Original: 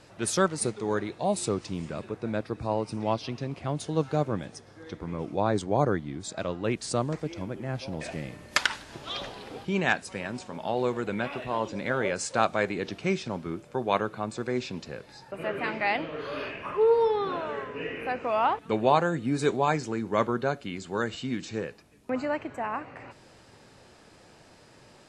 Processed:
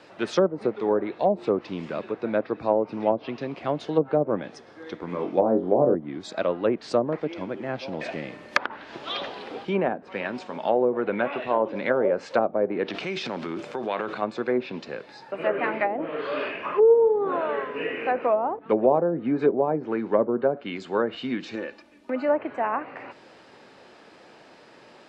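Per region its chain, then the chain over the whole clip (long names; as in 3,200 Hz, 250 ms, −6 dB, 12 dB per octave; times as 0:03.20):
0:05.09–0:05.95: high-pass filter 96 Hz + floating-point word with a short mantissa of 4 bits + flutter between parallel walls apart 3.8 metres, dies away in 0.25 s
0:12.88–0:14.22: high-shelf EQ 3,400 Hz +8.5 dB + downward compressor 5 to 1, threshold −29 dBFS + transient designer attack −1 dB, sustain +9 dB
0:21.55–0:22.28: comb filter 3.4 ms, depth 70% + downward compressor 1.5 to 1, threshold −39 dBFS
whole clip: three-way crossover with the lows and the highs turned down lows −19 dB, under 200 Hz, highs −15 dB, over 4,600 Hz; treble cut that deepens with the level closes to 510 Hz, closed at −22.5 dBFS; dynamic equaliser 560 Hz, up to +4 dB, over −37 dBFS, Q 2.5; level +5.5 dB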